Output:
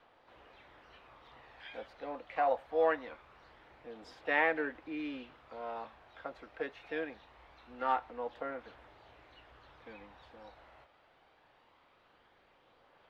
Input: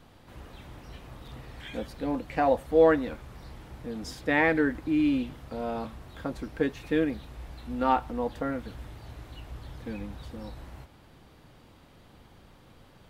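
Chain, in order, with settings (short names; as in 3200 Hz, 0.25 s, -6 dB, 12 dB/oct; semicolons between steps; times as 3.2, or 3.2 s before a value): three-band isolator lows -21 dB, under 430 Hz, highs -24 dB, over 3700 Hz; phaser 0.23 Hz, delay 1.6 ms, feedback 21%; harmoniser +7 st -18 dB; gain -5 dB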